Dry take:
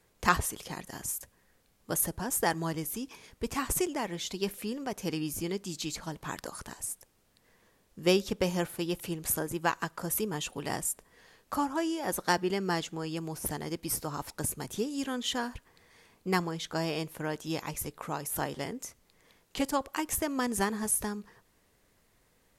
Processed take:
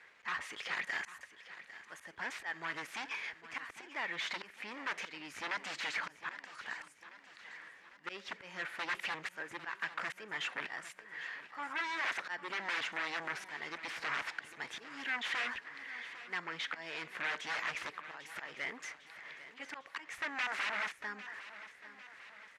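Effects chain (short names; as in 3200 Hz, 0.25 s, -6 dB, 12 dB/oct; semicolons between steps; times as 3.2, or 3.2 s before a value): one diode to ground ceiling -17.5 dBFS; auto swell 0.562 s; sine folder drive 20 dB, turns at -18 dBFS; band-pass 1900 Hz, Q 2.5; air absorption 50 m; feedback echo 0.801 s, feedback 54%, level -14.5 dB; gain -5 dB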